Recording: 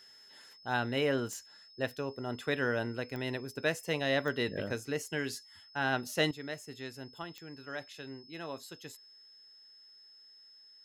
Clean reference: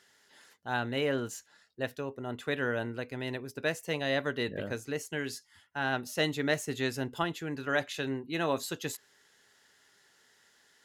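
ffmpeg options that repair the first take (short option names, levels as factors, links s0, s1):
-af "adeclick=t=4,bandreject=f=5200:w=30,asetnsamples=n=441:p=0,asendcmd='6.31 volume volume 11.5dB',volume=1"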